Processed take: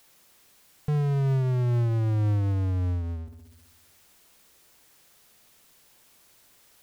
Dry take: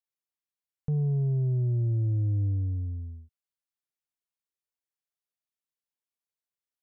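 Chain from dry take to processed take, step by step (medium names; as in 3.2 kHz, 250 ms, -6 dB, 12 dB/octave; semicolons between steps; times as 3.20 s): feedback echo behind a low-pass 66 ms, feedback 54%, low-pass 620 Hz, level -14 dB; power-law waveshaper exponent 0.5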